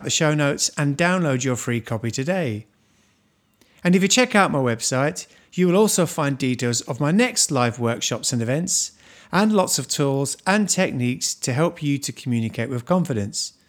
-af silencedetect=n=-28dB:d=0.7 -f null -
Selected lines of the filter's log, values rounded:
silence_start: 2.60
silence_end: 3.85 | silence_duration: 1.25